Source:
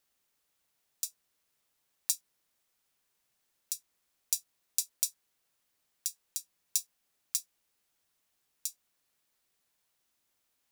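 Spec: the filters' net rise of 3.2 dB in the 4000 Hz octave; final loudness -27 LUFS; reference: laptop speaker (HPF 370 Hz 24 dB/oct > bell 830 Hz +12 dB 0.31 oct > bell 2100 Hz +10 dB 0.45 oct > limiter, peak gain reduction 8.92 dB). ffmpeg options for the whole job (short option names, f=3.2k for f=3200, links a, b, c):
-af "highpass=f=370:w=0.5412,highpass=f=370:w=1.3066,equalizer=f=830:t=o:w=0.31:g=12,equalizer=f=2.1k:t=o:w=0.45:g=10,equalizer=f=4k:t=o:g=4,volume=13dB,alimiter=limit=-0.5dB:level=0:latency=1"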